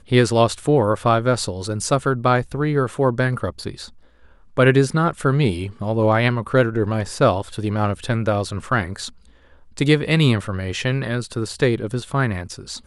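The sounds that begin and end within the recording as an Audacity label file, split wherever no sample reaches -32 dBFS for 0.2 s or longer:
4.570000	9.090000	sound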